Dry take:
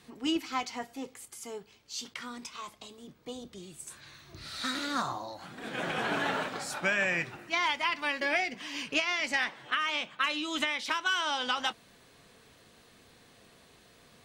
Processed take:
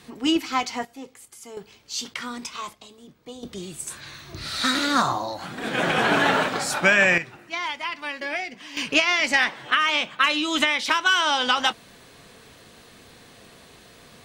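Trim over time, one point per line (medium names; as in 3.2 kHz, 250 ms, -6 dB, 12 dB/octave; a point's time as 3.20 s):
+8.5 dB
from 0.85 s +0.5 dB
from 1.57 s +8.5 dB
from 2.73 s +1.5 dB
from 3.43 s +11 dB
from 7.18 s 0 dB
from 8.77 s +9.5 dB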